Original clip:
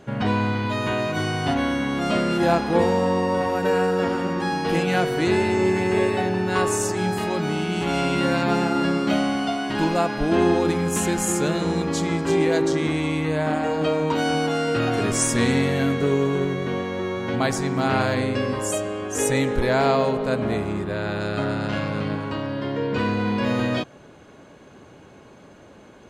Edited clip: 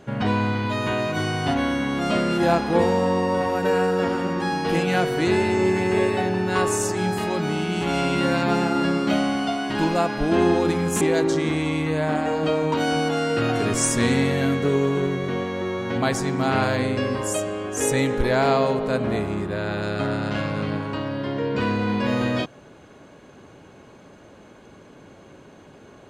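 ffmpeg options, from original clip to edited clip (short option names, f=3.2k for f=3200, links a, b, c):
-filter_complex "[0:a]asplit=2[a][b];[a]atrim=end=11.012[c];[b]atrim=start=12.388[d];[c][d]acrossfade=d=0.004:c1=hsin:c2=hsin"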